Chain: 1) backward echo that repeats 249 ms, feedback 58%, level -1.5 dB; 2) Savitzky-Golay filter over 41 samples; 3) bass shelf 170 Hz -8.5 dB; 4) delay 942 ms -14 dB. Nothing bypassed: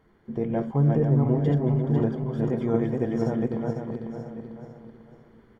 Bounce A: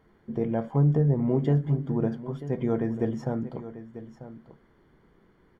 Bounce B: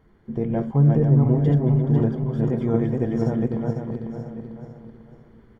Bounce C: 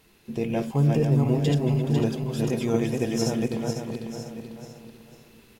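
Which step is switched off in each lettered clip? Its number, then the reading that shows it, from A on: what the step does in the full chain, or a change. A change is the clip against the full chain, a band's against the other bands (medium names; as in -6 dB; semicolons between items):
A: 1, momentary loudness spread change +4 LU; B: 3, 125 Hz band +4.5 dB; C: 2, 2 kHz band +5.5 dB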